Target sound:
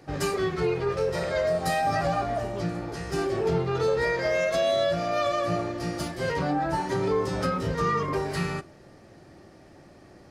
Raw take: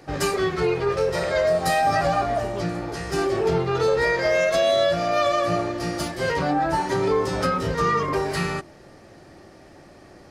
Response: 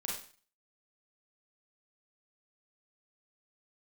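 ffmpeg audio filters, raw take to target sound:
-filter_complex "[0:a]equalizer=f=140:t=o:w=2.5:g=4,asplit=2[a][b];[1:a]atrim=start_sample=2205[c];[b][c]afir=irnorm=-1:irlink=0,volume=-20dB[d];[a][d]amix=inputs=2:normalize=0,volume=-6dB"

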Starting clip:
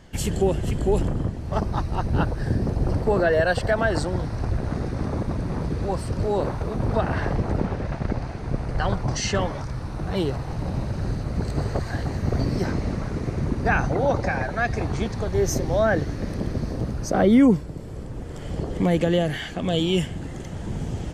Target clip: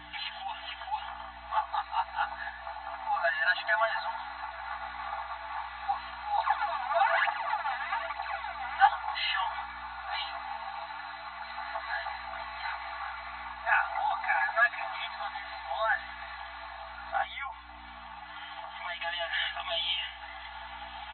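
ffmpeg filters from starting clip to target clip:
-filter_complex "[0:a]alimiter=limit=-15.5dB:level=0:latency=1:release=88,asettb=1/sr,asplit=3[a][b][c];[a]atrim=end=6.384[d];[b]atrim=start=6.38:end=8.86,asetpts=PTS-STARTPTS,afade=t=in:d=0.004:c=qsin,afade=t=out:st=2.476:d=0.004:c=qsin,aphaser=in_gain=1:out_gain=1:delay=4.2:decay=0.8:speed=1.1:type=triangular[e];[c]atrim=start=8.856[f];[d][e]acrossfade=d=0.004:c1=hsin:c2=qsin[g];[g][f]acrossfade=d=0.004:c1=qsin:c2=hsin,afftfilt=real='re*between(b*sr/4096,660,4200)':imag='im*between(b*sr/4096,660,4200)':win_size=4096:overlap=0.75,aeval=exprs='val(0)+0.000891*(sin(2*PI*60*n/s)+sin(2*PI*2*60*n/s)/2+sin(2*PI*3*60*n/s)/3+sin(2*PI*4*60*n/s)/4+sin(2*PI*5*60*n/s)/5)':c=same,acompressor=mode=upward:threshold=-41dB:ratio=2.5,flanger=delay=9.6:depth=10:regen=17:speed=0.27:shape=triangular,aecho=1:1:3.5:0.75,volume=4.5dB"

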